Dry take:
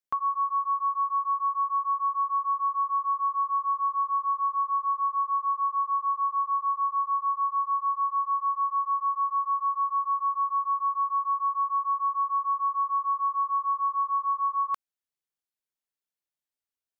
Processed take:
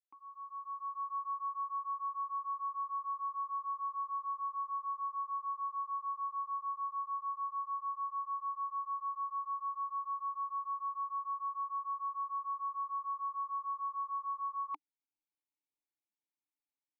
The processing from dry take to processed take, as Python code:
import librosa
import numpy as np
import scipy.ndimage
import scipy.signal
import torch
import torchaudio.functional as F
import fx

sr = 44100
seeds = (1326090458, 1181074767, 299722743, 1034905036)

y = fx.fade_in_head(x, sr, length_s=1.16)
y = fx.vowel_filter(y, sr, vowel='u')
y = F.gain(torch.from_numpy(y), 6.5).numpy()